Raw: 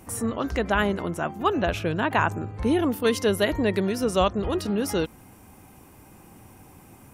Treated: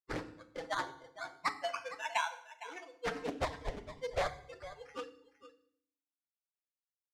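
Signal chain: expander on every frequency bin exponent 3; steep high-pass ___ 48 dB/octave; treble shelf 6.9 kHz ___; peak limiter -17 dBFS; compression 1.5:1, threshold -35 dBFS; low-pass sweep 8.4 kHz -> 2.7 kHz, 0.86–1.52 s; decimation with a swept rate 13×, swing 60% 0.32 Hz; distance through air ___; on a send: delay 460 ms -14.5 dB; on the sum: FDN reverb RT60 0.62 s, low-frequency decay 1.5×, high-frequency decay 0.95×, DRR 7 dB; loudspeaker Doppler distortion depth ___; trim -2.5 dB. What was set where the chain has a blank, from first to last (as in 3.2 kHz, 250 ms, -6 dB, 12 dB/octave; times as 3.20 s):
500 Hz, -3 dB, 86 m, 0.64 ms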